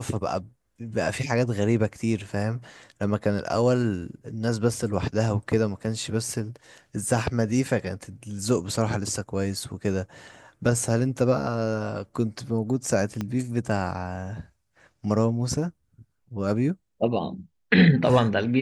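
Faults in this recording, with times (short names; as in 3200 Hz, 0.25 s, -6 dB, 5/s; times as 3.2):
13.21 pop -16 dBFS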